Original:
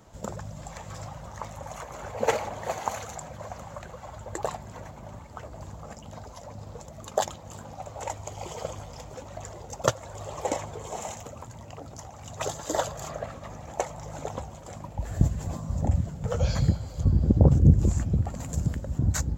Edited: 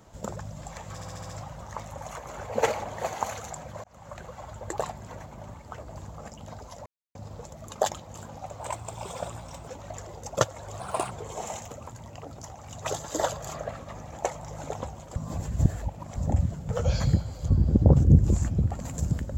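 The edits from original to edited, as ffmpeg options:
-filter_complex "[0:a]asplit=14[s0][s1][s2][s3][s4][s5][s6][s7][s8][s9][s10][s11][s12][s13];[s0]atrim=end=1.012[s14];[s1]atrim=start=0.938:end=1.012[s15];[s2]atrim=start=0.938:end=1.012[s16];[s3]atrim=start=0.938:end=1.012[s17];[s4]atrim=start=0.938:end=1.012[s18];[s5]atrim=start=0.938:end=3.49,asetpts=PTS-STARTPTS,afade=t=out:st=2.548:d=0.004:c=hsin[s19];[s6]atrim=start=3.49:end=6.51,asetpts=PTS-STARTPTS,afade=t=in:d=0.36,afade=t=out:st=3.016:d=0.004:c=hsin,apad=pad_dur=0.29[s20];[s7]atrim=start=6.51:end=7.964,asetpts=PTS-STARTPTS,afade=t=in:d=0.004:c=hsin[s21];[s8]atrim=start=7.96:end=9.14,asetpts=PTS-STARTPTS,asetrate=48510,aresample=44100,atrim=end_sample=47307,asetpts=PTS-STARTPTS[s22];[s9]atrim=start=9.136:end=10.264[s23];[s10]atrim=start=10.26:end=10.66,asetpts=PTS-STARTPTS,asetrate=55566,aresample=44100[s24];[s11]atrim=start=10.656:end=14.712[s25];[s12]atrim=start=14.708:end=15.712,asetpts=PTS-STARTPTS,areverse[s26];[s13]atrim=start=15.708[s27];[s14][s15]acrossfade=d=0.004:c1=hsin:c2=hsin[s28];[s28][s16]acrossfade=d=0.004:c1=hsin:c2=hsin[s29];[s29][s17]acrossfade=d=0.004:c1=hsin:c2=hsin[s30];[s30][s18]acrossfade=d=0.004:c1=hsin:c2=hsin[s31];[s19][s20][s21]concat=n=3:v=0:a=1[s32];[s31][s32]acrossfade=d=0.004:c1=hsin:c2=hsin[s33];[s33][s22]acrossfade=d=0.004:c1=hsin:c2=hsin[s34];[s34][s23]acrossfade=d=0.004:c1=hsin:c2=hsin[s35];[s35][s24]acrossfade=d=0.004:c1=hsin:c2=hsin[s36];[s36][s25]acrossfade=d=0.004:c1=hsin:c2=hsin[s37];[s37][s26]acrossfade=d=0.004:c1=hsin:c2=hsin[s38];[s38][s27]acrossfade=d=0.004:c1=hsin:c2=hsin"

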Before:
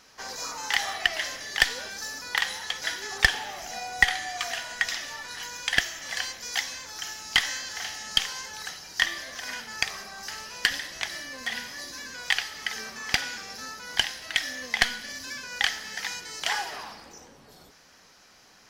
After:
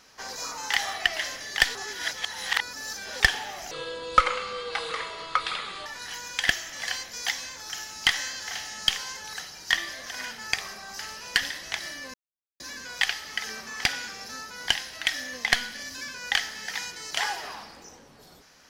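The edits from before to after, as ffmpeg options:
-filter_complex "[0:a]asplit=7[s0][s1][s2][s3][s4][s5][s6];[s0]atrim=end=1.752[s7];[s1]atrim=start=1.748:end=3.202,asetpts=PTS-STARTPTS,areverse[s8];[s2]atrim=start=3.198:end=3.714[s9];[s3]atrim=start=3.71:end=5.15,asetpts=PTS-STARTPTS,asetrate=29547,aresample=44100,atrim=end_sample=94782,asetpts=PTS-STARTPTS[s10];[s4]atrim=start=5.146:end=11.43,asetpts=PTS-STARTPTS,afade=t=out:st=6.28:d=0.004:c=hsin[s11];[s5]atrim=start=11.43:end=11.89,asetpts=PTS-STARTPTS,volume=0[s12];[s6]atrim=start=11.89,asetpts=PTS-STARTPTS,afade=t=in:d=0.004:c=hsin[s13];[s7][s8]acrossfade=d=0.004:c1=hsin:c2=hsin[s14];[s14][s9]acrossfade=d=0.004:c1=hsin:c2=hsin[s15];[s15][s10]acrossfade=d=0.004:c1=hsin:c2=hsin[s16];[s11][s12][s13]concat=n=3:v=0:a=1[s17];[s16][s17]acrossfade=d=0.004:c1=hsin:c2=hsin"

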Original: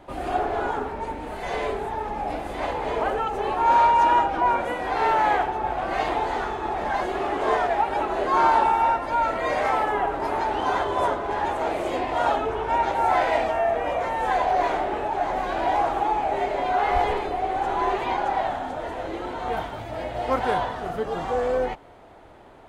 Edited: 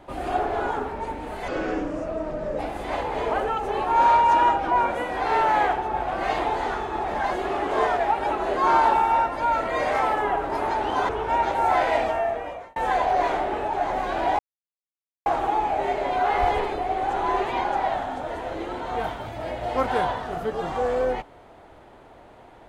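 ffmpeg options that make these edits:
-filter_complex "[0:a]asplit=6[s0][s1][s2][s3][s4][s5];[s0]atrim=end=1.484[s6];[s1]atrim=start=1.48:end=2.29,asetpts=PTS-STARTPTS,asetrate=32193,aresample=44100[s7];[s2]atrim=start=2.286:end=10.792[s8];[s3]atrim=start=12.488:end=14.16,asetpts=PTS-STARTPTS,afade=t=out:st=1.012:d=0.66[s9];[s4]atrim=start=14.16:end=15.79,asetpts=PTS-STARTPTS,afade=t=in:d=0.004:c=hsin,afade=t=out:st=1.626:d=0.004:c=hsin,apad=pad_dur=0.87[s10];[s5]atrim=start=15.79,asetpts=PTS-STARTPTS,afade=t=in:d=0.004:c=hsin[s11];[s6][s7]acrossfade=d=0.004:c1=hsin:c2=hsin[s12];[s12][s8]acrossfade=d=0.004:c1=hsin:c2=hsin[s13];[s9][s10][s11]concat=n=3:v=0:a=1[s14];[s13][s14]acrossfade=d=0.004:c1=hsin:c2=hsin"

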